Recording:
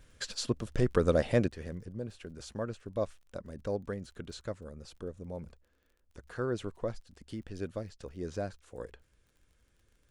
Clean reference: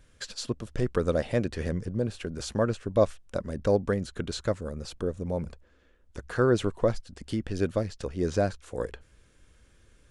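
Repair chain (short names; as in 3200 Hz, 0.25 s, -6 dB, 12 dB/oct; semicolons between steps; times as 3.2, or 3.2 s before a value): de-click; gain correction +10.5 dB, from 1.48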